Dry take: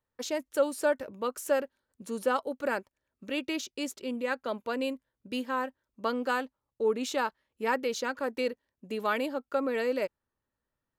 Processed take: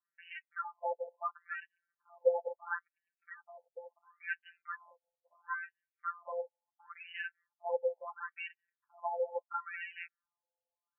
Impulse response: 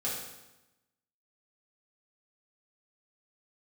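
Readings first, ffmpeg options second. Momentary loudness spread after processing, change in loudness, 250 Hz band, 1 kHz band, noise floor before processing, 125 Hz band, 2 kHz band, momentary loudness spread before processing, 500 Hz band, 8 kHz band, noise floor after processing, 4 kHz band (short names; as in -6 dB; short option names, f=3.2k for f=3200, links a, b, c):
17 LU, -8.0 dB, under -40 dB, -7.0 dB, under -85 dBFS, n/a, -6.5 dB, 8 LU, -8.5 dB, under -35 dB, under -85 dBFS, -17.0 dB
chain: -filter_complex "[0:a]adynamicequalizer=threshold=0.00224:dfrequency=2100:dqfactor=3.9:tfrequency=2100:tqfactor=3.9:attack=5:release=100:ratio=0.375:range=2:mode=cutabove:tftype=bell,afftfilt=real='hypot(re,im)*cos(PI*b)':imag='0':win_size=1024:overlap=0.75,asplit=2[a][b];[b]acrusher=bits=5:mode=log:mix=0:aa=0.000001,volume=-5dB[c];[a][c]amix=inputs=2:normalize=0,afftfilt=real='re*between(b*sr/1024,620*pow(2200/620,0.5+0.5*sin(2*PI*0.73*pts/sr))/1.41,620*pow(2200/620,0.5+0.5*sin(2*PI*0.73*pts/sr))*1.41)':imag='im*between(b*sr/1024,620*pow(2200/620,0.5+0.5*sin(2*PI*0.73*pts/sr))/1.41,620*pow(2200/620,0.5+0.5*sin(2*PI*0.73*pts/sr))*1.41)':win_size=1024:overlap=0.75,volume=-2dB"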